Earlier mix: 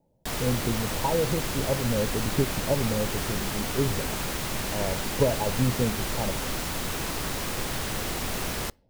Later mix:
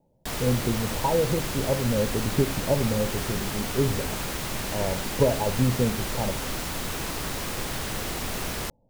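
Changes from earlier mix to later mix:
speech: send +11.0 dB; background: send off

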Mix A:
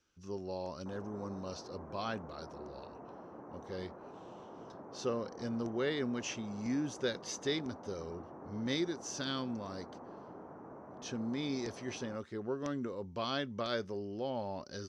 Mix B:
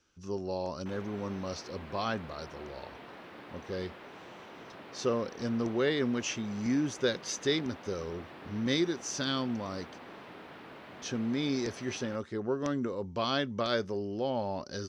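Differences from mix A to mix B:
speech +5.5 dB; background: remove low-pass 1.1 kHz 24 dB/octave

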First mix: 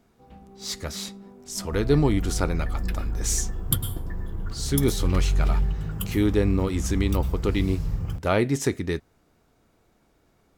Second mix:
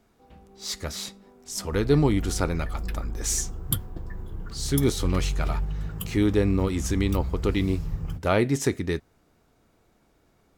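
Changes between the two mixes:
first sound: add high-pass 210 Hz; reverb: off

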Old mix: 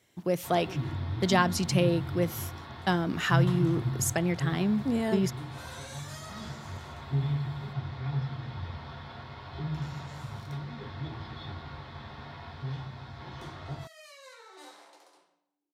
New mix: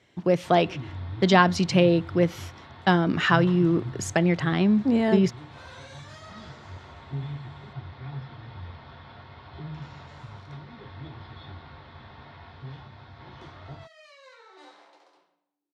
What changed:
speech +6.5 dB; first sound: send -9.5 dB; master: add low-pass 4.2 kHz 12 dB/octave

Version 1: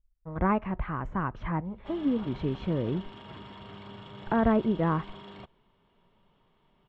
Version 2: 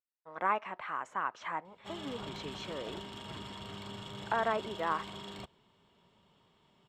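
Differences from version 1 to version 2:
speech: add high-pass 730 Hz 12 dB/octave; master: remove low-pass 2.7 kHz 12 dB/octave

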